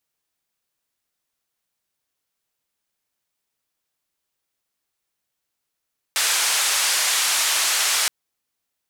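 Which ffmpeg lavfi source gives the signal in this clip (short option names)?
-f lavfi -i "anoisesrc=c=white:d=1.92:r=44100:seed=1,highpass=f=910,lowpass=f=9200,volume=-11.5dB"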